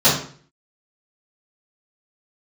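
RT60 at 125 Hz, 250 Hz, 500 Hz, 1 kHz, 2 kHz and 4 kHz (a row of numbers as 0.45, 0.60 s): 0.60, 0.50, 0.50, 0.45, 0.45, 0.40 s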